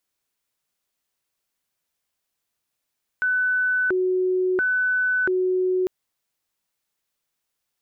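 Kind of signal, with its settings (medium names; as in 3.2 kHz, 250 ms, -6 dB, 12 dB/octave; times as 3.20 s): siren hi-lo 369–1500 Hz 0.73 per s sine -18.5 dBFS 2.65 s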